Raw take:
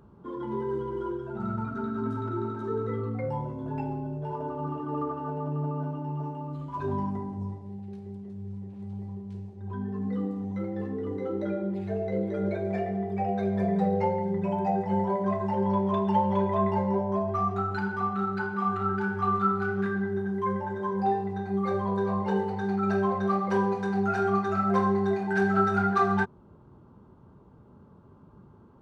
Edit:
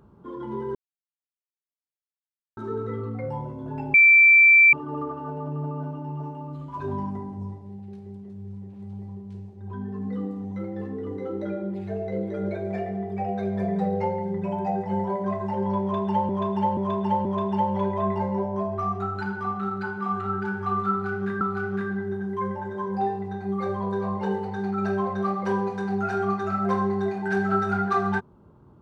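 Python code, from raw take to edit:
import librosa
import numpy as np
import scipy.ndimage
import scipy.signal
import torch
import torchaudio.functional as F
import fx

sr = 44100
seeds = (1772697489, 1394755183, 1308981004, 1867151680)

y = fx.edit(x, sr, fx.silence(start_s=0.75, length_s=1.82),
    fx.bleep(start_s=3.94, length_s=0.79, hz=2340.0, db=-10.5),
    fx.repeat(start_s=15.81, length_s=0.48, count=4),
    fx.repeat(start_s=19.46, length_s=0.51, count=2), tone=tone)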